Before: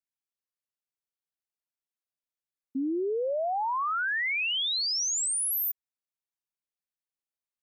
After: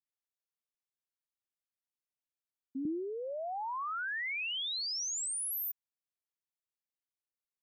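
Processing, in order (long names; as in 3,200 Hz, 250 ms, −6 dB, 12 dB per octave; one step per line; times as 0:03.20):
0:02.85–0:05.05: low shelf with overshoot 280 Hz +11.5 dB, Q 1.5
level −7.5 dB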